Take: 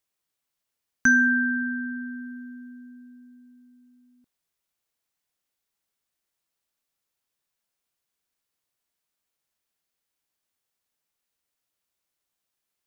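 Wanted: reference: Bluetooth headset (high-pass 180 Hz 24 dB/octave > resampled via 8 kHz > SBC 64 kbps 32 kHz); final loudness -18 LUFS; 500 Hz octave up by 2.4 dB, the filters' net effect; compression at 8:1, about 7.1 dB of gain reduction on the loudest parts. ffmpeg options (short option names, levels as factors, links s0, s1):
-af "equalizer=f=500:t=o:g=5.5,acompressor=threshold=0.0891:ratio=8,highpass=f=180:w=0.5412,highpass=f=180:w=1.3066,aresample=8000,aresample=44100,volume=2.99" -ar 32000 -c:a sbc -b:a 64k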